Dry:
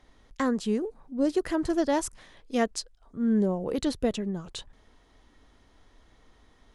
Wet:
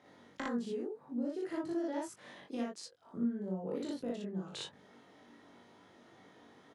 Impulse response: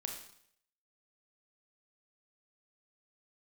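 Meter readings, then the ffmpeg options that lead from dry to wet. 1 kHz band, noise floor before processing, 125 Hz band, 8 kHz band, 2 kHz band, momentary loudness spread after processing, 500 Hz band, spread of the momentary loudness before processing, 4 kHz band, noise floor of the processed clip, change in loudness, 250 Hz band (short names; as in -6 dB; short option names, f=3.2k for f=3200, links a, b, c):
-12.0 dB, -61 dBFS, -10.0 dB, -14.0 dB, -10.5 dB, 13 LU, -11.0 dB, 12 LU, -9.0 dB, -62 dBFS, -10.5 dB, -10.0 dB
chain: -filter_complex "[0:a]highpass=f=140:w=0.5412,highpass=f=140:w=1.3066,highshelf=f=2.9k:g=-9,bandreject=f=1.1k:w=18,acompressor=threshold=-41dB:ratio=6,asplit=2[a][b];[b]adelay=21,volume=-3.5dB[c];[a][c]amix=inputs=2:normalize=0,aecho=1:1:38|59:0.631|0.708"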